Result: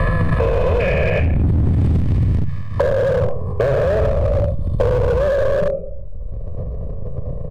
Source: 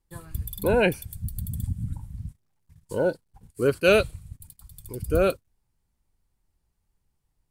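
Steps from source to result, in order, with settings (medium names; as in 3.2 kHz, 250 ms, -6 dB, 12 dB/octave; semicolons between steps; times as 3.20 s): spectrogram pixelated in time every 400 ms; peaking EQ 290 Hz -8 dB 1 oct; in parallel at -2 dB: compression 4:1, threshold -43 dBFS, peak gain reduction 16 dB; on the sum: reverberation RT60 0.50 s, pre-delay 26 ms, DRR 6.5 dB; low-pass sweep 2.1 kHz -> 510 Hz, 1.91–5.04 s; Butterworth band-stop 1.5 kHz, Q 3.6; comb 1.7 ms, depth 98%; transient shaper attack -1 dB, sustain +8 dB; peak limiter -16.5 dBFS, peak gain reduction 10 dB; overload inside the chain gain 22 dB; three bands compressed up and down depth 100%; trim +8.5 dB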